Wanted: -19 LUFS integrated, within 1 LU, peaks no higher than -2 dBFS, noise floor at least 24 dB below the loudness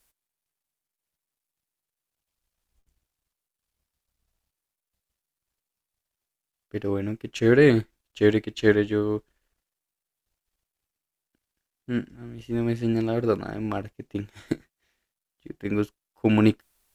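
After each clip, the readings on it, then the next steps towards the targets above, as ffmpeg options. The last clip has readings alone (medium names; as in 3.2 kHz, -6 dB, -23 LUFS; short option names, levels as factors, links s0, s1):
loudness -24.5 LUFS; peak level -4.5 dBFS; loudness target -19.0 LUFS
-> -af "volume=1.88,alimiter=limit=0.794:level=0:latency=1"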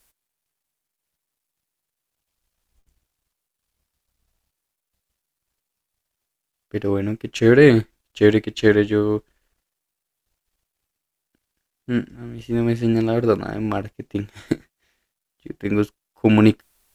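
loudness -19.5 LUFS; peak level -2.0 dBFS; noise floor -83 dBFS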